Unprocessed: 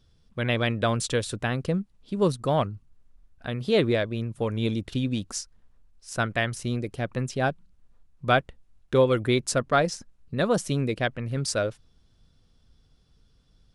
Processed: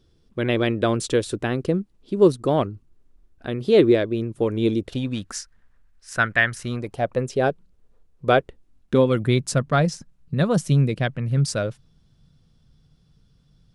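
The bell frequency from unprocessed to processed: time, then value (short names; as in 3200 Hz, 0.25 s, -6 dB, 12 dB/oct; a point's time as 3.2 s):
bell +11.5 dB 0.85 oct
4.77 s 350 Hz
5.24 s 1700 Hz
6.57 s 1700 Hz
7.25 s 440 Hz
8.38 s 440 Hz
9.3 s 150 Hz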